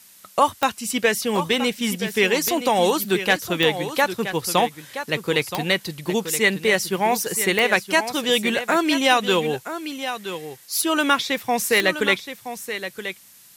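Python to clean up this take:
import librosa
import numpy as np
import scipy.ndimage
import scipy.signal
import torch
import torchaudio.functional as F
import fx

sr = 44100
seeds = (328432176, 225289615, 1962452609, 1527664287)

y = fx.fix_declick_ar(x, sr, threshold=10.0)
y = fx.noise_reduce(y, sr, print_start_s=13.05, print_end_s=13.55, reduce_db=21.0)
y = fx.fix_echo_inverse(y, sr, delay_ms=973, level_db=-10.5)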